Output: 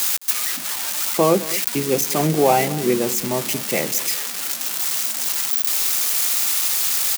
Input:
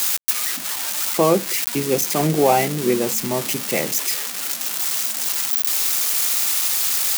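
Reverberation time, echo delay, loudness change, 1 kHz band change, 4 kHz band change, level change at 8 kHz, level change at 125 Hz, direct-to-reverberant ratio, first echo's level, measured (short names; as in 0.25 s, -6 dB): none, 0.215 s, 0.0 dB, 0.0 dB, 0.0 dB, 0.0 dB, 0.0 dB, none, -17.0 dB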